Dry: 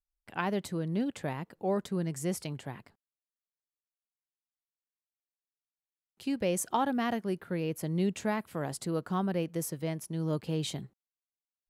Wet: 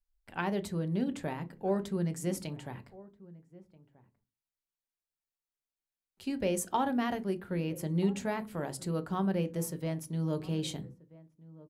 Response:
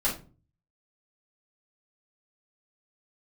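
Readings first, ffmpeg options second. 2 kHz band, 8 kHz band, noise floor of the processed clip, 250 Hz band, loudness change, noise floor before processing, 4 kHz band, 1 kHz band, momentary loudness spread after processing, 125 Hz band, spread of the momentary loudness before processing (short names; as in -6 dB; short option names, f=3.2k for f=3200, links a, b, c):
-1.5 dB, -2.0 dB, under -85 dBFS, 0.0 dB, -0.5 dB, under -85 dBFS, -2.0 dB, -1.5 dB, 13 LU, +0.5 dB, 9 LU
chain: -filter_complex "[0:a]asplit=2[a][b];[b]adelay=1283,volume=-20dB,highshelf=f=4k:g=-28.9[c];[a][c]amix=inputs=2:normalize=0,asplit=2[d][e];[1:a]atrim=start_sample=2205,asetrate=70560,aresample=44100,lowshelf=f=320:g=10[f];[e][f]afir=irnorm=-1:irlink=0,volume=-14.5dB[g];[d][g]amix=inputs=2:normalize=0,volume=-3dB"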